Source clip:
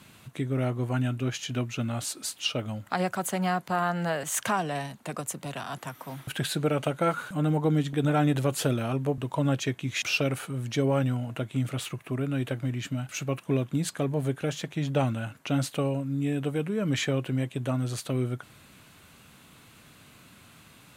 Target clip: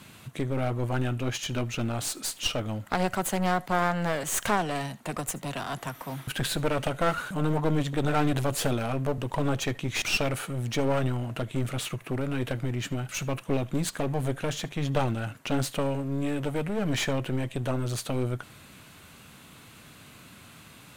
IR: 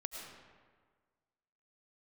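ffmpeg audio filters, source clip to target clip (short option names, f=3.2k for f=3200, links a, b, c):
-filter_complex "[0:a]aeval=exprs='clip(val(0),-1,0.0178)':c=same[a];[1:a]atrim=start_sample=2205,atrim=end_sample=3528[b];[a][b]afir=irnorm=-1:irlink=0,volume=7dB"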